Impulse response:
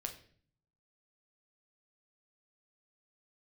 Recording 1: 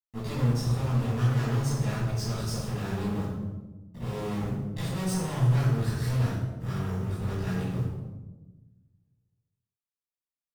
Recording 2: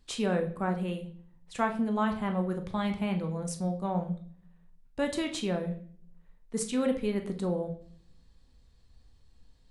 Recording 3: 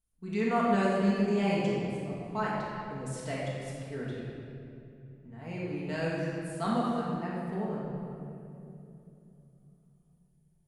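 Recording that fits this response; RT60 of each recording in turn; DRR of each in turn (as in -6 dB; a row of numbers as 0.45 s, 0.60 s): 2; 1.1 s, 0.50 s, 2.9 s; -10.5 dB, 4.5 dB, -7.5 dB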